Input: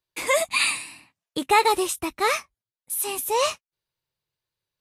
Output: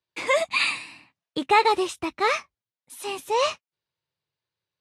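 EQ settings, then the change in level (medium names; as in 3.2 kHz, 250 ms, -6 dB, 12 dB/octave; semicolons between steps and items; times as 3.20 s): high-pass 82 Hz; low-pass 5 kHz 12 dB/octave; 0.0 dB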